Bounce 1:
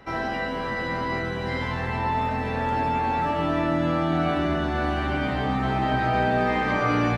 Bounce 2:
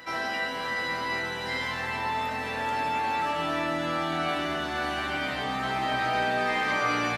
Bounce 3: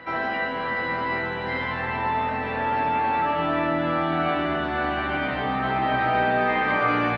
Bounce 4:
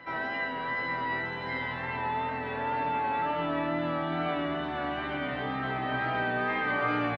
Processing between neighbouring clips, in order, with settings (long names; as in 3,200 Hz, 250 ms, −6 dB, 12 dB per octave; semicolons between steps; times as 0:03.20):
spectral tilt +3.5 dB per octave; backwards echo 838 ms −16.5 dB; level −2.5 dB
high-frequency loss of the air 460 metres; level +7 dB
comb filter 7.1 ms, depth 39%; tape wow and flutter 25 cents; level −7 dB